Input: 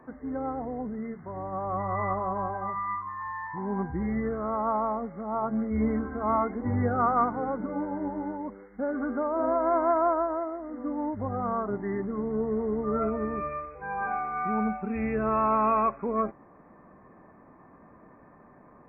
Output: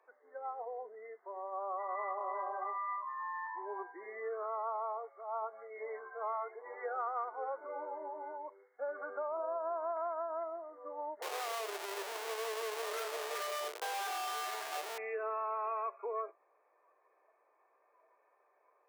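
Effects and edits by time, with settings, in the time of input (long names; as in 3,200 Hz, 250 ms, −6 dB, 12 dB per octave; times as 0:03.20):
0:01.84–0:02.40: delay throw 320 ms, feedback 30%, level −6.5 dB
0:04.43–0:07.07: parametric band 140 Hz −15 dB 1.6 octaves
0:09.37–0:09.97: low-pass filter 1,400 Hz
0:11.22–0:14.98: comparator with hysteresis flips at −39 dBFS
whole clip: noise reduction from a noise print of the clip's start 11 dB; Butterworth high-pass 410 Hz 48 dB per octave; downward compressor 6 to 1, threshold −30 dBFS; level −4.5 dB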